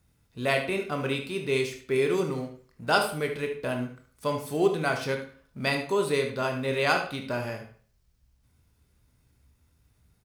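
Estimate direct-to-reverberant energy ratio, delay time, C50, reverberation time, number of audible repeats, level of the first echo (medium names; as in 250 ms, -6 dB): 3.0 dB, 74 ms, 7.0 dB, 0.45 s, 1, -10.0 dB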